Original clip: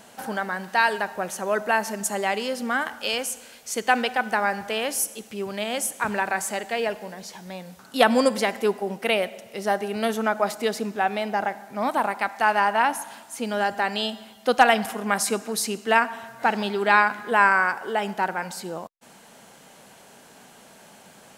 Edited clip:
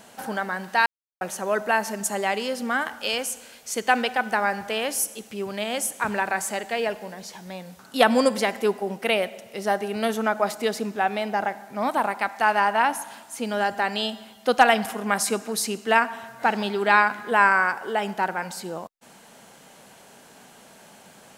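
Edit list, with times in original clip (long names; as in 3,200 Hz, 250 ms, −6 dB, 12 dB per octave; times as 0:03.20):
0:00.86–0:01.21: silence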